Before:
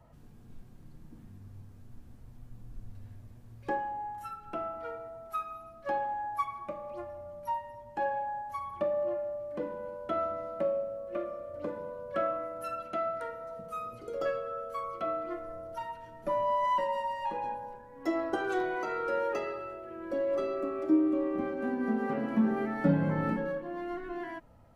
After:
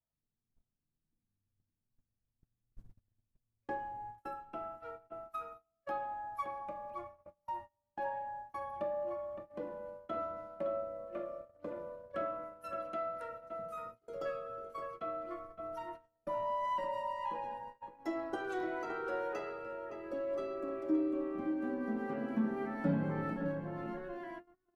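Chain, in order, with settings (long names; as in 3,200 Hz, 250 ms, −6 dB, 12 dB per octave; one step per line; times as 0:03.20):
slap from a distant wall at 97 metres, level −6 dB
noise gate −39 dBFS, range −31 dB
level −7 dB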